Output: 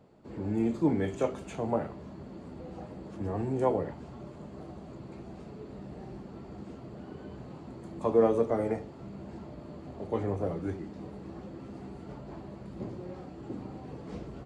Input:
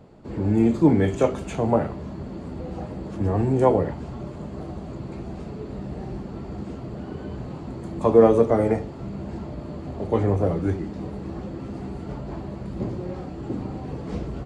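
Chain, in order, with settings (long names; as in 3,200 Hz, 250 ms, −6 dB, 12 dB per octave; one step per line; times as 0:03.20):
low-shelf EQ 89 Hz −9 dB
level −8.5 dB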